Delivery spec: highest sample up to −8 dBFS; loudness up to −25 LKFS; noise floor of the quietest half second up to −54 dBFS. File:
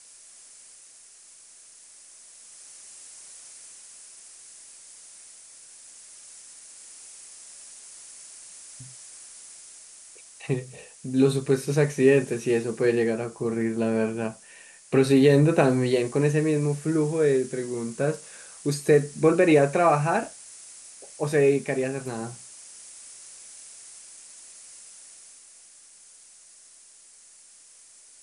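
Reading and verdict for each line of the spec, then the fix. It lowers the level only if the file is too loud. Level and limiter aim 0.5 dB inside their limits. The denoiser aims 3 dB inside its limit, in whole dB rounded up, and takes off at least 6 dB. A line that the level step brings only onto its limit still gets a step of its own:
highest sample −6.5 dBFS: out of spec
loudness −23.5 LKFS: out of spec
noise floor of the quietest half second −52 dBFS: out of spec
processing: broadband denoise 6 dB, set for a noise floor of −52 dBFS
level −2 dB

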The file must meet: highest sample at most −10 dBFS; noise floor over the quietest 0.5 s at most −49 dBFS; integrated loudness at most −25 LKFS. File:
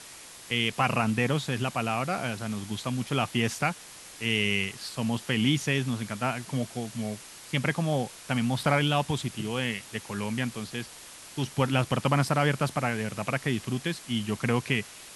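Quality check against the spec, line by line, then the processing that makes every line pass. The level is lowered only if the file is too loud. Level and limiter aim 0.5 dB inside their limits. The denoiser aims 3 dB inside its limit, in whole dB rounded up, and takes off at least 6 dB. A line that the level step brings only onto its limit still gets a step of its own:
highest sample −9.0 dBFS: out of spec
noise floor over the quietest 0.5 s −47 dBFS: out of spec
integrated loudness −28.5 LKFS: in spec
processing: broadband denoise 6 dB, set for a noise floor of −47 dBFS
brickwall limiter −10.5 dBFS

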